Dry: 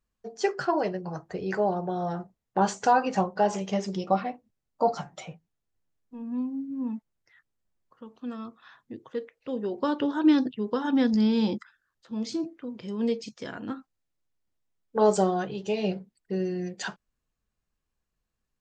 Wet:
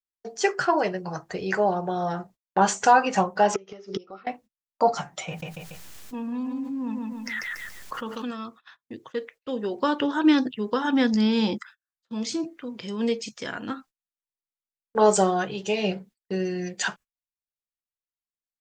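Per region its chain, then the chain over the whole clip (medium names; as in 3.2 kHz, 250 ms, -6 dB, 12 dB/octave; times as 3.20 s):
3.54–4.27 s: Chebyshev low-pass 5.8 kHz, order 4 + inverted gate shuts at -25 dBFS, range -25 dB + small resonant body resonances 400/1300 Hz, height 16 dB, ringing for 35 ms
5.28–8.31 s: bass shelf 390 Hz -4 dB + feedback delay 142 ms, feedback 24%, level -6.5 dB + level flattener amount 70%
whole clip: dynamic bell 4.4 kHz, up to -6 dB, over -53 dBFS, Q 1.5; gate -50 dBFS, range -30 dB; tilt shelf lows -5.5 dB, about 1.1 kHz; trim +6 dB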